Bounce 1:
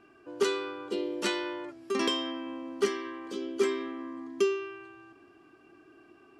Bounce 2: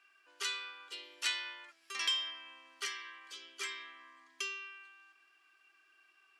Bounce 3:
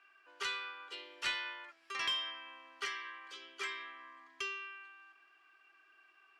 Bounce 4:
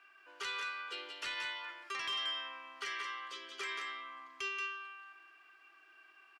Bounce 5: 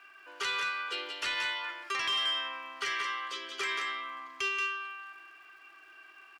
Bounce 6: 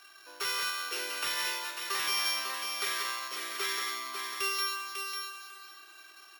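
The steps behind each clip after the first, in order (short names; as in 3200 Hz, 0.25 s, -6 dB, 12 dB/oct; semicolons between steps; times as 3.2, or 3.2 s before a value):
Chebyshev high-pass 2100 Hz, order 2
overdrive pedal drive 8 dB, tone 1000 Hz, clips at -20 dBFS; gain +4.5 dB
limiter -34 dBFS, peak gain reduction 10 dB; echo 0.18 s -5.5 dB; gain +3 dB
in parallel at -8 dB: hard clip -36.5 dBFS, distortion -14 dB; on the sum: crackle 120/s -61 dBFS; gain +4.5 dB
sample sorter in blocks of 8 samples; thinning echo 0.547 s, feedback 18%, high-pass 340 Hz, level -5.5 dB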